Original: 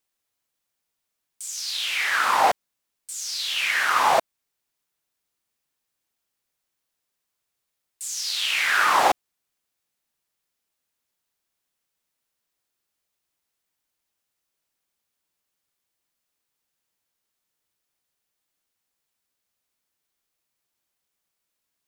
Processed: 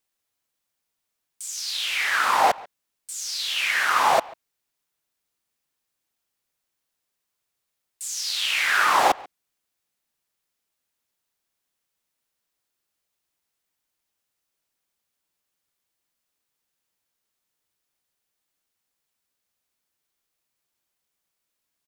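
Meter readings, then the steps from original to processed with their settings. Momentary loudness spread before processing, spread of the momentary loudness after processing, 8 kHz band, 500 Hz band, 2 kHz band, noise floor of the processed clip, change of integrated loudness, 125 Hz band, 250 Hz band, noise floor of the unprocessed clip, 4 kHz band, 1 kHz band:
13 LU, 13 LU, 0.0 dB, 0.0 dB, 0.0 dB, −81 dBFS, 0.0 dB, can't be measured, 0.0 dB, −81 dBFS, 0.0 dB, 0.0 dB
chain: far-end echo of a speakerphone 140 ms, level −20 dB

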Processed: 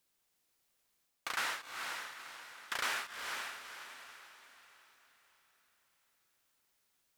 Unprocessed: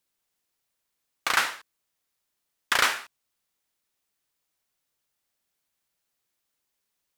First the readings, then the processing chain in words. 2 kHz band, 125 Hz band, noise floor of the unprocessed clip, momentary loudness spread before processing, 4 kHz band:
−10.0 dB, below −10 dB, −81 dBFS, 12 LU, −10.0 dB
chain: reversed playback
downward compressor 5 to 1, threshold −36 dBFS, peak gain reduction 17 dB
reversed playback
feedback delay with all-pass diffusion 475 ms, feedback 42%, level −4.5 dB
level +1 dB

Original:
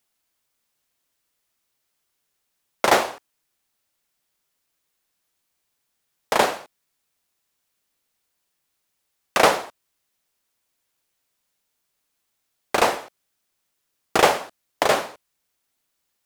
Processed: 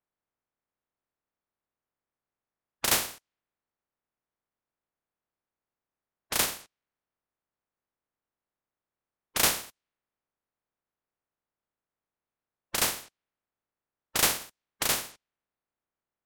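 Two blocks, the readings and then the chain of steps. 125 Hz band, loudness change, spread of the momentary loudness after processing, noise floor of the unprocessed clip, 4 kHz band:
−4.5 dB, −6.0 dB, 12 LU, −76 dBFS, −2.5 dB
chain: compressing power law on the bin magnitudes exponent 0.14
low-pass that shuts in the quiet parts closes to 1,400 Hz, open at −21 dBFS
level −7 dB

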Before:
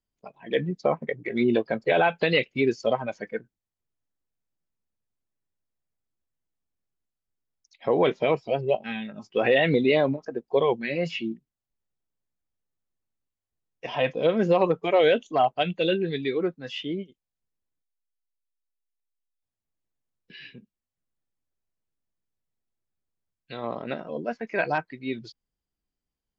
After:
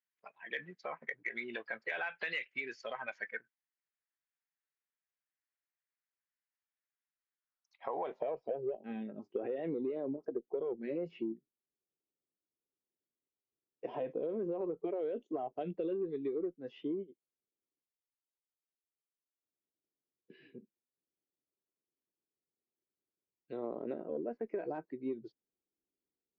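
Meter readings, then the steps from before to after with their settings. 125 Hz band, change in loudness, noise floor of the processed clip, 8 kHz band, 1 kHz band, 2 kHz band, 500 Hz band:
−20.0 dB, −14.0 dB, below −85 dBFS, can't be measured, −17.0 dB, −12.0 dB, −14.0 dB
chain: brickwall limiter −17.5 dBFS, peak gain reduction 8 dB
band-pass filter sweep 1,800 Hz → 370 Hz, 0:07.30–0:08.78
harmonic generator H 4 −43 dB, 5 −35 dB, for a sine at −18.5 dBFS
downward compressor 6 to 1, threshold −36 dBFS, peak gain reduction 12.5 dB
level +2 dB

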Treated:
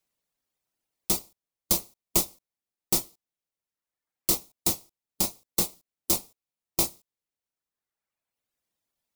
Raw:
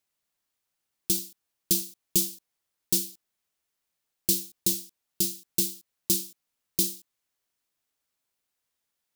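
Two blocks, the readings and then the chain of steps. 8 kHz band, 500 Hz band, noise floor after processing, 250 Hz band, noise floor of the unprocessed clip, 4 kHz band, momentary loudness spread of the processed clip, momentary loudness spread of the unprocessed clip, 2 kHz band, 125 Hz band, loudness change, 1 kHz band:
−0.5 dB, +3.5 dB, below −85 dBFS, −1.0 dB, −83 dBFS, −0.5 dB, 7 LU, 12 LU, +7.0 dB, 0.0 dB, 0.0 dB, can't be measured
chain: reverb reduction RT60 1.6 s
low-shelf EQ 380 Hz −7.5 dB
in parallel at −9 dB: decimation without filtering 27×

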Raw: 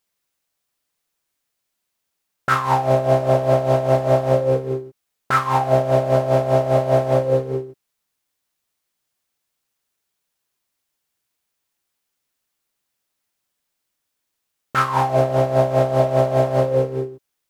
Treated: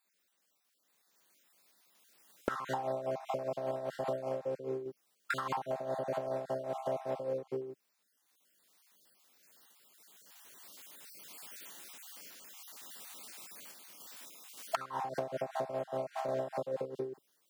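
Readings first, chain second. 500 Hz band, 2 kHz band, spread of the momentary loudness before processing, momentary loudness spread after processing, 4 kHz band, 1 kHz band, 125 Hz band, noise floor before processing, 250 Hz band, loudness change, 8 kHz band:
−18.5 dB, −16.0 dB, 7 LU, 14 LU, −13.0 dB, −18.0 dB, −28.0 dB, −78 dBFS, −18.5 dB, −20.5 dB, can't be measured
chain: time-frequency cells dropped at random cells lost 34%
camcorder AGC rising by 7.4 dB per second
high-pass filter 170 Hz 24 dB per octave
sample-and-hold tremolo
downward compressor 10 to 1, threshold −34 dBFS, peak gain reduction 26.5 dB
level +1 dB

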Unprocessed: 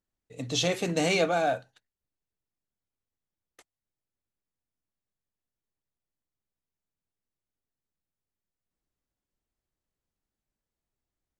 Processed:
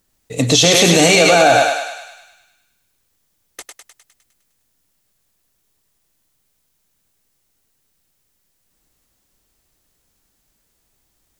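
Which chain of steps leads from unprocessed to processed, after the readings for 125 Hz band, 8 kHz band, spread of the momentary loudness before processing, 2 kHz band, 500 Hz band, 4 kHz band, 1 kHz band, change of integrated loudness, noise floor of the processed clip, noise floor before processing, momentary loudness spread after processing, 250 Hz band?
+15.0 dB, +21.0 dB, 9 LU, +17.0 dB, +14.5 dB, +18.0 dB, +16.0 dB, +15.5 dB, −67 dBFS, below −85 dBFS, 15 LU, +15.0 dB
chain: high-shelf EQ 4,200 Hz +8 dB
feedback echo with a high-pass in the loop 102 ms, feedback 60%, high-pass 540 Hz, level −4 dB
boost into a limiter +20 dB
level −1 dB

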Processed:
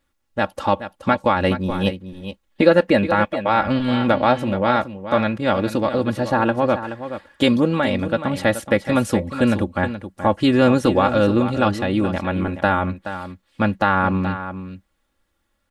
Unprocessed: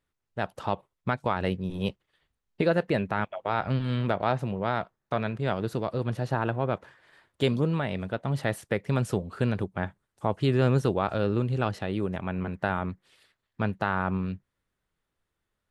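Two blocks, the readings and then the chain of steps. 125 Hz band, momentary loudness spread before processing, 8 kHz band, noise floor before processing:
+3.0 dB, 8 LU, +10.5 dB, −83 dBFS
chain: comb filter 3.6 ms, depth 71%
on a send: single-tap delay 425 ms −11 dB
on the sum: level +8.5 dB

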